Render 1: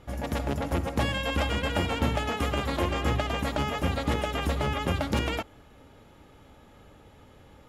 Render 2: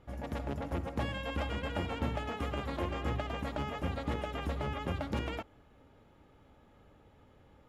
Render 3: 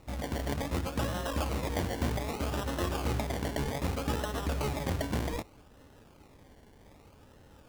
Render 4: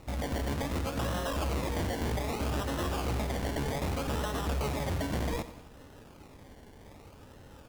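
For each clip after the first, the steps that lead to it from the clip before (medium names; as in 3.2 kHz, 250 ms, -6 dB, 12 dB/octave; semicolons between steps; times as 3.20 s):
treble shelf 3.8 kHz -9.5 dB; trim -7.5 dB
in parallel at -3 dB: peak limiter -30 dBFS, peak gain reduction 9 dB; on the sum: decimation with a swept rate 27×, swing 60% 0.64 Hz
in parallel at -9.5 dB: sine folder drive 12 dB, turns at -18.5 dBFS; on the sum: feedback delay 89 ms, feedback 50%, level -14 dB; trim -5.5 dB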